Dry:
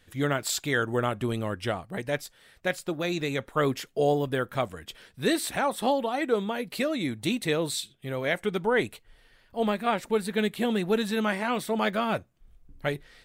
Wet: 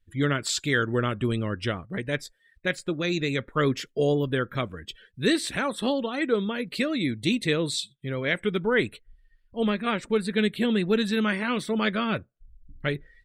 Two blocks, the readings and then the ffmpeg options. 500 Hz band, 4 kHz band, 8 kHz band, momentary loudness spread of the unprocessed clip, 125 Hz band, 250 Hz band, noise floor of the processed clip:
0.0 dB, +3.5 dB, -0.5 dB, 7 LU, +4.0 dB, +3.5 dB, -66 dBFS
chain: -filter_complex "[0:a]afftdn=nr=25:nf=-48,acrossover=split=8200[a][b];[b]acompressor=threshold=-57dB:ratio=4:attack=1:release=60[c];[a][c]amix=inputs=2:normalize=0,equalizer=f=770:w=1.8:g=-13,volume=4dB"

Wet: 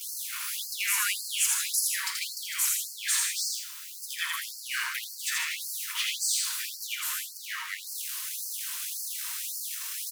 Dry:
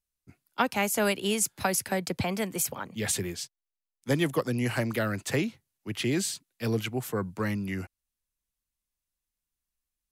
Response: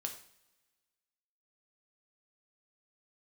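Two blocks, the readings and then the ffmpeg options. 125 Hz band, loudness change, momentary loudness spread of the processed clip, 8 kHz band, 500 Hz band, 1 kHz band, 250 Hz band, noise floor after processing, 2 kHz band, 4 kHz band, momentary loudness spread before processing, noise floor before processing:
under -40 dB, +0.5 dB, 8 LU, +6.5 dB, under -40 dB, -8.0 dB, under -40 dB, -43 dBFS, +1.5 dB, +6.0 dB, 10 LU, under -85 dBFS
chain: -filter_complex "[0:a]aeval=exprs='val(0)+0.5*0.0422*sgn(val(0))':c=same,aecho=1:1:81.63|151.6:0.708|0.398[a];[1:a]atrim=start_sample=2205,asetrate=41895,aresample=44100[b];[a][b]afir=irnorm=-1:irlink=0,afftfilt=real='re*gte(b*sr/1024,890*pow(4300/890,0.5+0.5*sin(2*PI*1.8*pts/sr)))':imag='im*gte(b*sr/1024,890*pow(4300/890,0.5+0.5*sin(2*PI*1.8*pts/sr)))':win_size=1024:overlap=0.75"

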